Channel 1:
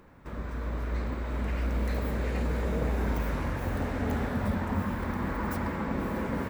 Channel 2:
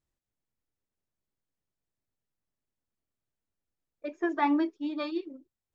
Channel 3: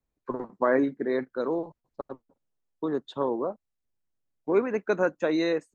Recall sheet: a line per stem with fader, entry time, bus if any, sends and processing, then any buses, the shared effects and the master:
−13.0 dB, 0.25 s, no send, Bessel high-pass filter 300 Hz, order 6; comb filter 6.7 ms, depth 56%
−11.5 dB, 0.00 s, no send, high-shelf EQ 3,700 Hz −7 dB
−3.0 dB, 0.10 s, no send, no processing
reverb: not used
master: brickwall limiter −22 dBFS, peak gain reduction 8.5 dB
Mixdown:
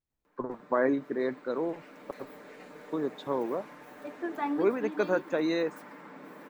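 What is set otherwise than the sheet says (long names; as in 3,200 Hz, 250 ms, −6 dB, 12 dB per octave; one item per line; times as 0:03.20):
stem 2 −11.5 dB → −5.5 dB
master: missing brickwall limiter −22 dBFS, peak gain reduction 8.5 dB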